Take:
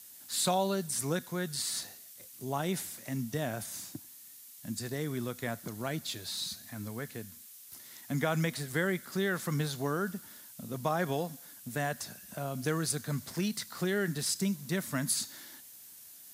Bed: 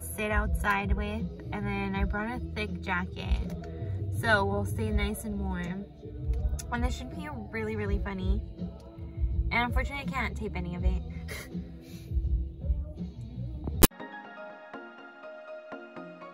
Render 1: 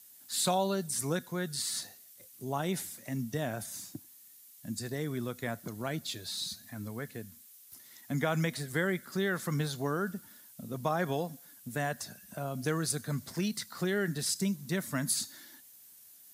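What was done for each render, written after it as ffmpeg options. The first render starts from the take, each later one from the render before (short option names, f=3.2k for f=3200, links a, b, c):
-af "afftdn=nr=6:nf=-52"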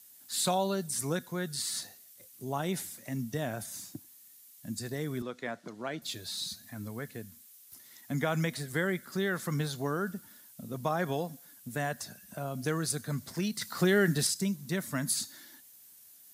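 -filter_complex "[0:a]asettb=1/sr,asplit=3[a][b][c];[a]atrim=end=5.224[d];[b]atrim=start=5.22:end=6.02,asetpts=PTS-STARTPTS,afade=t=in:d=0.004:c=qsin,afade=t=out:st=0.796:d=0.004:c=qsin,highpass=240,lowpass=5k[e];[c]atrim=start=6.016[f];[d][e]acrossfade=d=0.004:c1=hsin:c2=qsin[g];[g][f]acrossfade=d=0.004:c1=qsin:c2=hsin,asettb=1/sr,asplit=3[h][i][j];[h]atrim=end=13.614[k];[i]atrim=start=13.61:end=14.27,asetpts=PTS-STARTPTS,afade=t=in:d=0.004:c=qsin,afade=t=out:st=0.656:d=0.004:c=qsin,acontrast=54[l];[j]atrim=start=14.266[m];[k][l]acrossfade=d=0.004:c1=hsin:c2=qsin[n];[n][m]acrossfade=d=0.004:c1=qsin:c2=hsin"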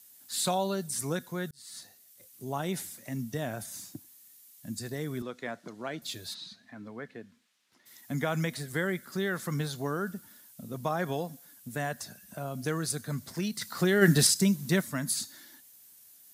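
-filter_complex "[0:a]asplit=3[a][b][c];[a]afade=t=out:st=6.33:d=0.02[d];[b]highpass=210,lowpass=3k,afade=t=in:st=6.33:d=0.02,afade=t=out:st=7.85:d=0.02[e];[c]afade=t=in:st=7.85:d=0.02[f];[d][e][f]amix=inputs=3:normalize=0,asplit=3[g][h][i];[g]afade=t=out:st=14.01:d=0.02[j];[h]acontrast=68,afade=t=in:st=14.01:d=0.02,afade=t=out:st=14.8:d=0.02[k];[i]afade=t=in:st=14.8:d=0.02[l];[j][k][l]amix=inputs=3:normalize=0,asplit=2[m][n];[m]atrim=end=1.51,asetpts=PTS-STARTPTS,afade=t=out:st=1.506:d=0.004:c=hsin[o];[n]atrim=start=1.51,asetpts=PTS-STARTPTS,afade=t=in:d=1.08:c=qsin[p];[o][p]concat=n=2:v=0:a=1"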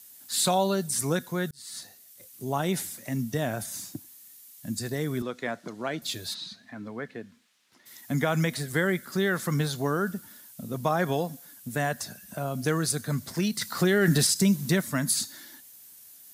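-af "acontrast=33,alimiter=limit=-13.5dB:level=0:latency=1:release=93"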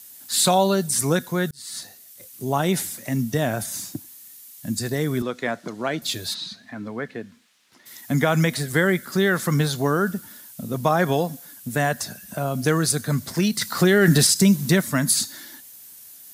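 -af "volume=6dB"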